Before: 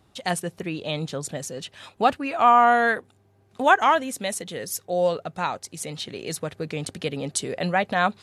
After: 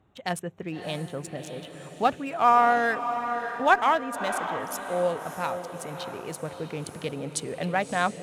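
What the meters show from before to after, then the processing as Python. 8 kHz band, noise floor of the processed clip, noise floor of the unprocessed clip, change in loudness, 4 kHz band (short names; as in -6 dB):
-6.5 dB, -45 dBFS, -61 dBFS, -3.0 dB, -5.5 dB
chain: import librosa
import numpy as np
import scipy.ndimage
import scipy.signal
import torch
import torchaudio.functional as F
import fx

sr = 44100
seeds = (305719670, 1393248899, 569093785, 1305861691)

y = fx.wiener(x, sr, points=9)
y = fx.cheby_harmonics(y, sr, harmonics=(3,), levels_db=(-22,), full_scale_db=-4.0)
y = fx.echo_diffused(y, sr, ms=620, feedback_pct=51, wet_db=-9.0)
y = F.gain(torch.from_numpy(y), -1.5).numpy()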